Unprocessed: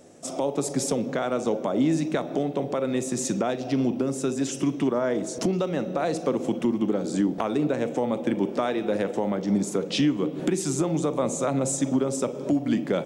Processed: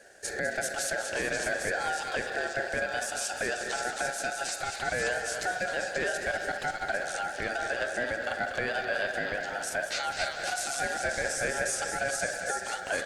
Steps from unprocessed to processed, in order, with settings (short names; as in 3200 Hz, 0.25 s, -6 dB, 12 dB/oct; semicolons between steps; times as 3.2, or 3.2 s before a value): HPF 400 Hz 24 dB/oct; limiter -22 dBFS, peak gain reduction 10 dB; delay with a stepping band-pass 0.267 s, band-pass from 3000 Hz, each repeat 0.7 oct, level -0.5 dB; ring modulator 1100 Hz; warbling echo 0.199 s, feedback 63%, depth 100 cents, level -10 dB; gain +2.5 dB